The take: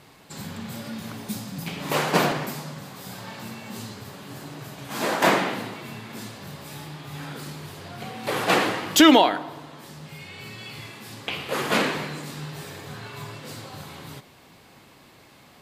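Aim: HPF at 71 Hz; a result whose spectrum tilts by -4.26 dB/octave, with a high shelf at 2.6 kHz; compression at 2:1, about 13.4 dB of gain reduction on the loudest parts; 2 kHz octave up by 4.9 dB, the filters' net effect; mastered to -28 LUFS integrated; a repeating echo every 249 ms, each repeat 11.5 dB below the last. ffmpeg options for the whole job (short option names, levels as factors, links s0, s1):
-af "highpass=71,equalizer=f=2000:t=o:g=8,highshelf=f=2600:g=-4.5,acompressor=threshold=0.0224:ratio=2,aecho=1:1:249|498|747:0.266|0.0718|0.0194,volume=1.88"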